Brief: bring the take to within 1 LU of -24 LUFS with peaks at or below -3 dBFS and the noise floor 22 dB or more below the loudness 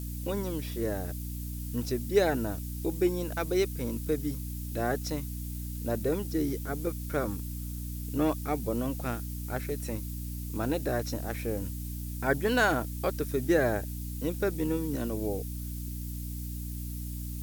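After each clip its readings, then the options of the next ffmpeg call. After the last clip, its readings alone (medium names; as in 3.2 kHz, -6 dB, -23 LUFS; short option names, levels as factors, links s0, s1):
hum 60 Hz; highest harmonic 300 Hz; hum level -34 dBFS; noise floor -37 dBFS; noise floor target -54 dBFS; loudness -32.0 LUFS; peak level -12.5 dBFS; loudness target -24.0 LUFS
-> -af "bandreject=f=60:t=h:w=4,bandreject=f=120:t=h:w=4,bandreject=f=180:t=h:w=4,bandreject=f=240:t=h:w=4,bandreject=f=300:t=h:w=4"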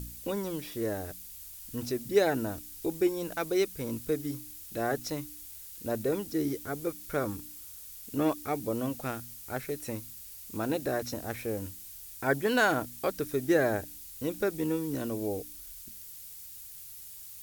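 hum not found; noise floor -47 dBFS; noise floor target -54 dBFS
-> -af "afftdn=nr=7:nf=-47"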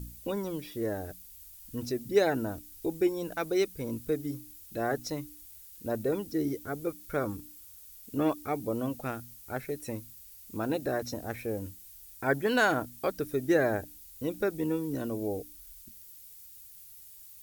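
noise floor -51 dBFS; noise floor target -54 dBFS
-> -af "afftdn=nr=6:nf=-51"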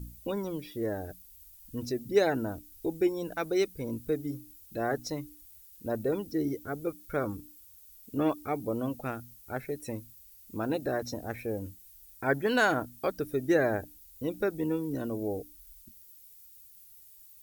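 noise floor -55 dBFS; loudness -32.5 LUFS; peak level -12.5 dBFS; loudness target -24.0 LUFS
-> -af "volume=2.66"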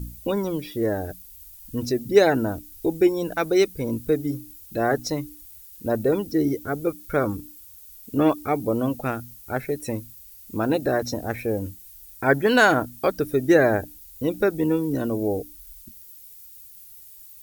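loudness -24.0 LUFS; peak level -4.0 dBFS; noise floor -46 dBFS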